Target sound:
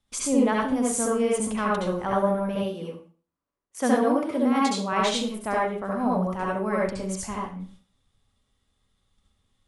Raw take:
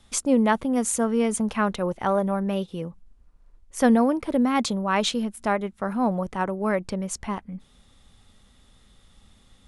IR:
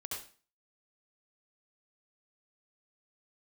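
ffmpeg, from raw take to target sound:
-filter_complex "[0:a]asettb=1/sr,asplit=3[a][b][c];[a]atrim=end=2.554[d];[b]atrim=start=2.55:end=4.93,asetpts=PTS-STARTPTS,afade=t=in:d=0.004:c=qsin,afade=t=out:st=2.376:d=0.004:c=qsin,highpass=180[e];[c]atrim=start=4.926[f];[d][e]acrossfade=d=0.004:c1=hsin:c2=qsin[g];[g][f]acrossfade=d=0.004:c1=qsin:c2=hsin,agate=range=-14dB:threshold=-48dB:ratio=16:detection=peak[h];[1:a]atrim=start_sample=2205[i];[h][i]afir=irnorm=-1:irlink=0"

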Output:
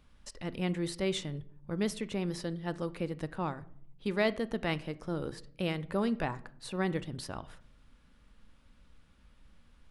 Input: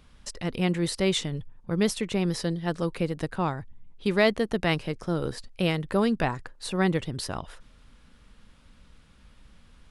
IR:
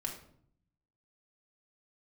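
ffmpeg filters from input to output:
-filter_complex "[0:a]asplit=2[a][b];[1:a]atrim=start_sample=2205,lowpass=3.6k[c];[b][c]afir=irnorm=-1:irlink=0,volume=-10dB[d];[a][d]amix=inputs=2:normalize=0,volume=-9dB"

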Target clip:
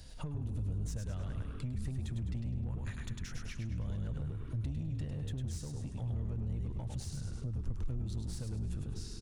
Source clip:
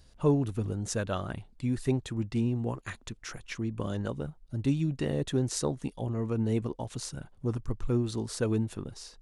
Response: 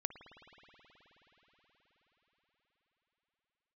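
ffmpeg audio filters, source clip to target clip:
-filter_complex "[0:a]asplit=2[a][b];[b]asuperstop=centerf=670:order=12:qfactor=1.3[c];[1:a]atrim=start_sample=2205[d];[c][d]afir=irnorm=-1:irlink=0,volume=-7dB[e];[a][e]amix=inputs=2:normalize=0,acompressor=threshold=-31dB:ratio=6,asplit=6[f][g][h][i][j][k];[g]adelay=102,afreqshift=-44,volume=-4dB[l];[h]adelay=204,afreqshift=-88,volume=-12.4dB[m];[i]adelay=306,afreqshift=-132,volume=-20.8dB[n];[j]adelay=408,afreqshift=-176,volume=-29.2dB[o];[k]adelay=510,afreqshift=-220,volume=-37.6dB[p];[f][l][m][n][o][p]amix=inputs=6:normalize=0,asoftclip=type=tanh:threshold=-31dB,acrossover=split=140[q][r];[r]acompressor=threshold=-51dB:ratio=10[s];[q][s]amix=inputs=2:normalize=0,volume=4dB"

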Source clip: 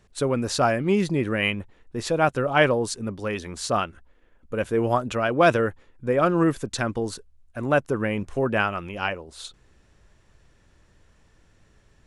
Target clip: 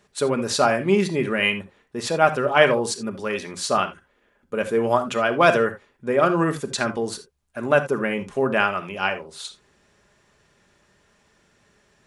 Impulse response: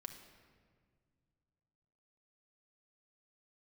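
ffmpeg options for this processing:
-filter_complex "[0:a]highpass=f=290:p=1[a];[1:a]atrim=start_sample=2205,atrim=end_sample=3969[b];[a][b]afir=irnorm=-1:irlink=0,volume=8.5dB"

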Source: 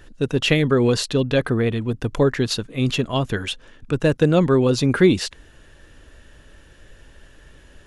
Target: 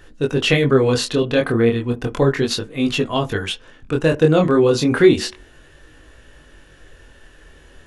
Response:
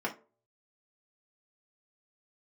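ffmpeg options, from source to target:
-filter_complex "[0:a]flanger=delay=19:depth=7.1:speed=0.33,asplit=2[a][b];[1:a]atrim=start_sample=2205[c];[b][c]afir=irnorm=-1:irlink=0,volume=-14.5dB[d];[a][d]amix=inputs=2:normalize=0,volume=4dB"

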